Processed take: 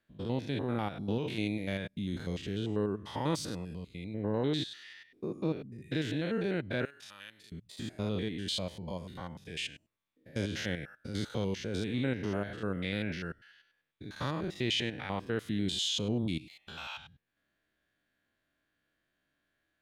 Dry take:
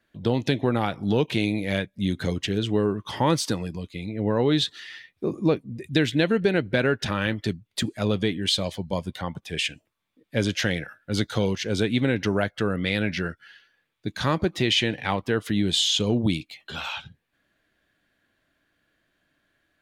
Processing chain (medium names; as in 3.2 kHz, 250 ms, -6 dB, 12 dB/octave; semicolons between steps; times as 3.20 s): spectrogram pixelated in time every 100 ms; 6.85–7.52 s: pre-emphasis filter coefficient 0.97; trim -8 dB